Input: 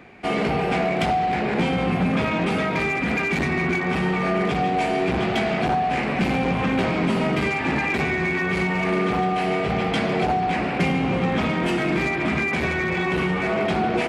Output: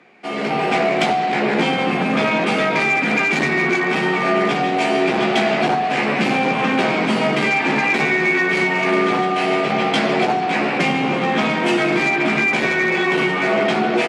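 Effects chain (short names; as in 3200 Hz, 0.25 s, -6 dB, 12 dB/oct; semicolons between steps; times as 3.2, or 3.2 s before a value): LPF 7500 Hz 12 dB/oct; doubler 14 ms -7 dB; AGC gain up to 11.5 dB; Bessel high-pass 230 Hz, order 4; high shelf 5800 Hz +6.5 dB; gain -4.5 dB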